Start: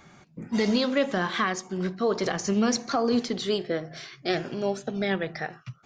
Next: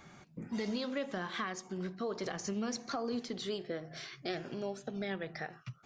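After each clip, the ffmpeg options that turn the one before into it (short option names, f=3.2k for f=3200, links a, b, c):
-af "acompressor=threshold=-38dB:ratio=2,volume=-3dB"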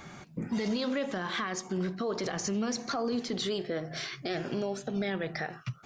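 -af "alimiter=level_in=8dB:limit=-24dB:level=0:latency=1:release=23,volume=-8dB,volume=8.5dB"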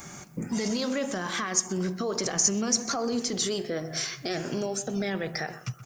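-filter_complex "[0:a]aexciter=amount=5.9:drive=4.9:freq=5.5k,asplit=2[a][b];[b]adelay=126,lowpass=f=1.8k:p=1,volume=-13.5dB,asplit=2[c][d];[d]adelay=126,lowpass=f=1.8k:p=1,volume=0.35,asplit=2[e][f];[f]adelay=126,lowpass=f=1.8k:p=1,volume=0.35[g];[a][c][e][g]amix=inputs=4:normalize=0,volume=2dB"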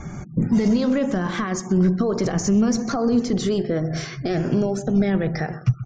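-af "aeval=exprs='0.335*sin(PI/2*1.41*val(0)/0.335)':c=same,afftfilt=real='re*gte(hypot(re,im),0.00891)':imag='im*gte(hypot(re,im),0.00891)':win_size=1024:overlap=0.75,aemphasis=mode=reproduction:type=riaa,volume=-2.5dB"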